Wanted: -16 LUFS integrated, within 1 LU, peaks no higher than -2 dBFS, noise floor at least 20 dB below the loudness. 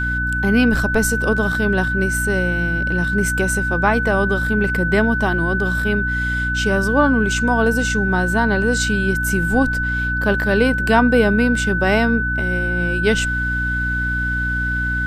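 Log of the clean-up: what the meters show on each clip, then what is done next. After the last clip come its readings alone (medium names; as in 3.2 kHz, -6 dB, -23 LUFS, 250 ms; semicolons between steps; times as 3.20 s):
hum 60 Hz; highest harmonic 300 Hz; hum level -21 dBFS; steady tone 1.5 kHz; tone level -20 dBFS; loudness -18.0 LUFS; peak level -1.5 dBFS; loudness target -16.0 LUFS
-> hum notches 60/120/180/240/300 Hz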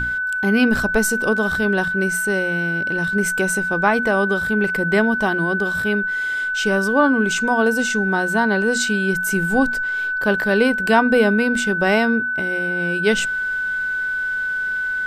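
hum not found; steady tone 1.5 kHz; tone level -20 dBFS
-> band-stop 1.5 kHz, Q 30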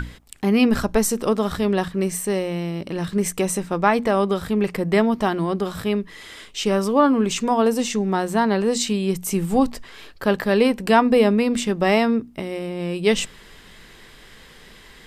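steady tone not found; loudness -21.0 LUFS; peak level -3.0 dBFS; loudness target -16.0 LUFS
-> trim +5 dB; peak limiter -2 dBFS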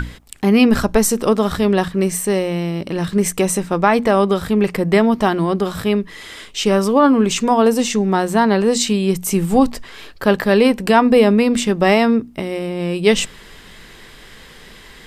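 loudness -16.5 LUFS; peak level -2.0 dBFS; noise floor -42 dBFS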